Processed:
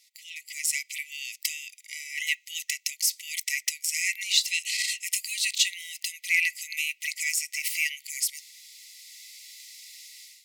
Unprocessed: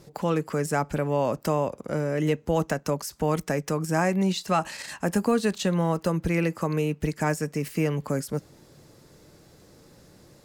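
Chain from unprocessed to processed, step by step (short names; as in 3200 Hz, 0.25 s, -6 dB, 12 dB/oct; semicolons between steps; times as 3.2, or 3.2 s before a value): AGC gain up to 15.5 dB; brick-wall FIR high-pass 1900 Hz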